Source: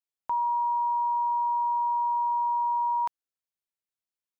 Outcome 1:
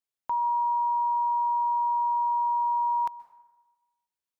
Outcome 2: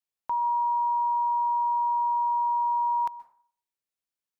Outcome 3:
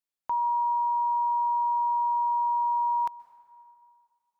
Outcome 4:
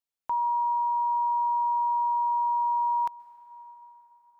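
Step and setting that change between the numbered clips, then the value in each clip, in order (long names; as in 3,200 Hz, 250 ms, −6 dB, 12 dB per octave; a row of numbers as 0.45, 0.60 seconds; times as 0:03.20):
dense smooth reverb, RT60: 1.1, 0.5, 2.3, 5.2 seconds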